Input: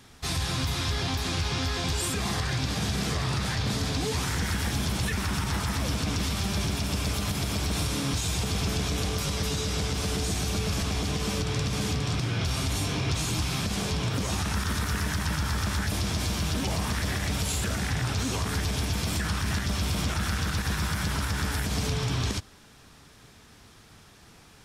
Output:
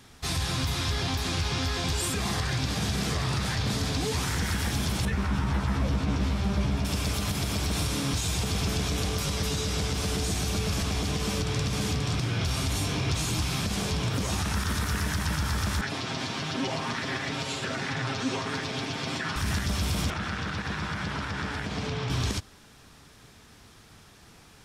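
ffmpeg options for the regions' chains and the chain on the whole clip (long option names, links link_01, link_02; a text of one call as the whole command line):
ffmpeg -i in.wav -filter_complex "[0:a]asettb=1/sr,asplit=3[link_01][link_02][link_03];[link_01]atrim=end=5.054[link_04];[link_02]atrim=start=5.05:end=6.85,asetpts=PTS-STARTPTS,afade=type=in:duration=0.004:curve=qsin,afade=type=out:start_time=1.796:duration=0.004:curve=qsin,lowpass=frequency=1500:poles=1,asplit=2[link_05][link_06];[link_06]adelay=15,volume=-3.5dB[link_07];[link_05][link_07]amix=inputs=2:normalize=0,atrim=end_sample=79380[link_08];[link_03]atrim=start=6.846[link_09];[link_04][link_08]acrossfade=duration=0.004:curve1=hsin:curve2=qsin[link_10];[link_10][link_09]acrossfade=duration=0.004:curve1=qsin:curve2=hsin,asettb=1/sr,asplit=3[link_11][link_12][link_13];[link_11]atrim=end=15.814[link_14];[link_12]atrim=start=15.81:end=19.36,asetpts=PTS-STARTPTS,afade=type=in:duration=0.004:curve=qsin,afade=type=out:start_time=3.546:duration=0.004:curve=qsin,highpass=190,lowpass=4500,aecho=1:1:7.5:0.69,atrim=end_sample=156555[link_15];[link_13]atrim=start=19.356[link_16];[link_14][link_15]acrossfade=duration=0.004:curve1=hsin:curve2=qsin[link_17];[link_17][link_16]acrossfade=duration=0.004:curve1=qsin:curve2=hsin,asettb=1/sr,asplit=3[link_18][link_19][link_20];[link_18]atrim=end=20.104[link_21];[link_19]atrim=start=20.1:end=22.1,asetpts=PTS-STARTPTS,afade=type=in:duration=0.004:curve=qsin,afade=type=out:start_time=1.996:duration=0.004:curve=qsin,highpass=100,lowpass=5800,bass=frequency=250:gain=-2,treble=frequency=4000:gain=-7[link_22];[link_20]atrim=start=22.096[link_23];[link_21][link_22]acrossfade=duration=0.004:curve1=hsin:curve2=qsin[link_24];[link_24][link_23]acrossfade=duration=0.004:curve1=qsin:curve2=hsin" out.wav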